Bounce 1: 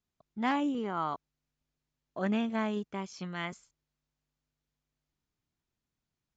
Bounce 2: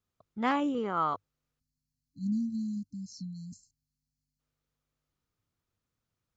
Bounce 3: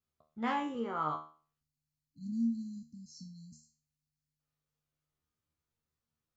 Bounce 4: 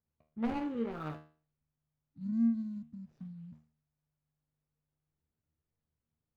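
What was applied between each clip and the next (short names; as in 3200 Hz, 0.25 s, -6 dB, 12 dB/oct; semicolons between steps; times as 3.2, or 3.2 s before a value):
spectral delete 1.6–4.39, 280–4000 Hz; thirty-one-band EQ 100 Hz +9 dB, 500 Hz +7 dB, 1250 Hz +7 dB
resonator 77 Hz, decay 0.4 s, harmonics all, mix 90%; gain +4 dB
median filter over 41 samples; tone controls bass +3 dB, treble -13 dB; gain +1.5 dB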